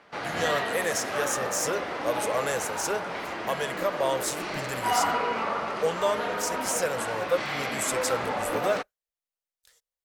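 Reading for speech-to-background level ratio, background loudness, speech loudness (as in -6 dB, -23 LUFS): 0.0 dB, -30.5 LUFS, -30.5 LUFS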